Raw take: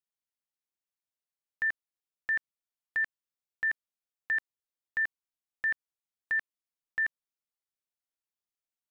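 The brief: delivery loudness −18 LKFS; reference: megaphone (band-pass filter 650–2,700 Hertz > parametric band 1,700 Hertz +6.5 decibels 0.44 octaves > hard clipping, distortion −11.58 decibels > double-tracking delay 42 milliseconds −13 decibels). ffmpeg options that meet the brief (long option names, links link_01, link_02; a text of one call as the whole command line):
ffmpeg -i in.wav -filter_complex "[0:a]highpass=650,lowpass=2700,equalizer=frequency=1700:width_type=o:width=0.44:gain=6.5,asoftclip=type=hard:threshold=-26dB,asplit=2[link_01][link_02];[link_02]adelay=42,volume=-13dB[link_03];[link_01][link_03]amix=inputs=2:normalize=0,volume=14dB" out.wav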